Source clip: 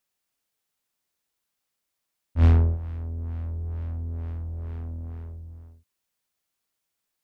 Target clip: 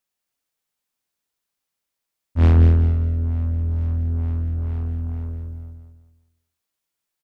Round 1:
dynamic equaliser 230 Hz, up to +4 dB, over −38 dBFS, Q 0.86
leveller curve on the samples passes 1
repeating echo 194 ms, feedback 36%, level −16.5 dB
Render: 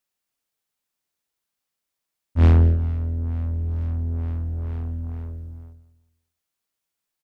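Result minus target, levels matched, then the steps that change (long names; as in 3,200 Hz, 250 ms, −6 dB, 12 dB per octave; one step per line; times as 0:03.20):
echo-to-direct −10.5 dB
change: repeating echo 194 ms, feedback 36%, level −6 dB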